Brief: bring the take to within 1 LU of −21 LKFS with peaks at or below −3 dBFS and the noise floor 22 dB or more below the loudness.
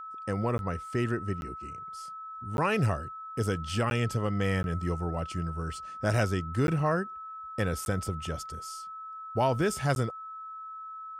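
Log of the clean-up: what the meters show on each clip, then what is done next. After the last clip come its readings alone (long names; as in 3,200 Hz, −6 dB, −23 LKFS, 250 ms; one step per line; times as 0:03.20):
number of dropouts 8; longest dropout 11 ms; interfering tone 1,300 Hz; level of the tone −39 dBFS; integrated loudness −31.5 LKFS; sample peak −14.5 dBFS; target loudness −21.0 LKFS
→ repair the gap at 0:00.58/0:01.41/0:02.57/0:03.90/0:04.63/0:06.67/0:07.85/0:09.95, 11 ms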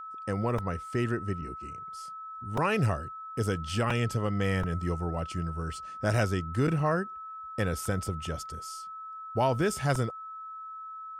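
number of dropouts 0; interfering tone 1,300 Hz; level of the tone −39 dBFS
→ notch filter 1,300 Hz, Q 30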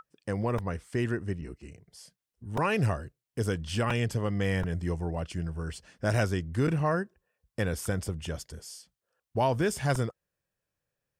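interfering tone none found; integrated loudness −31.0 LKFS; sample peak −14.5 dBFS; target loudness −21.0 LKFS
→ level +10 dB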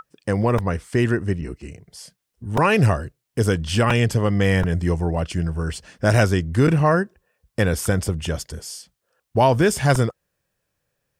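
integrated loudness −21.0 LKFS; sample peak −4.5 dBFS; background noise floor −78 dBFS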